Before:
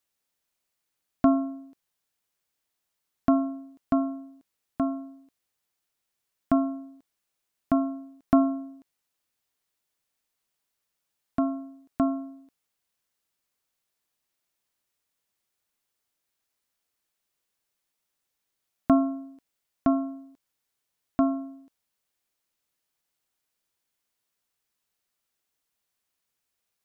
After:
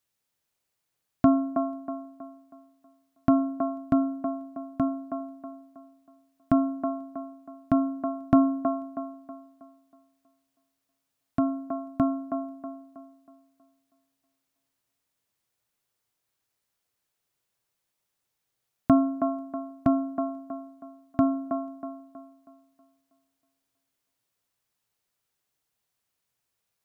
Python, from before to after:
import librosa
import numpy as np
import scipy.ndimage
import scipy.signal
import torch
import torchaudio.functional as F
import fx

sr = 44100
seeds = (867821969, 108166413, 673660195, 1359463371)

y = fx.peak_eq(x, sr, hz=120.0, db=8.5, octaves=0.76)
y = fx.echo_wet_bandpass(y, sr, ms=320, feedback_pct=39, hz=630.0, wet_db=-3.0)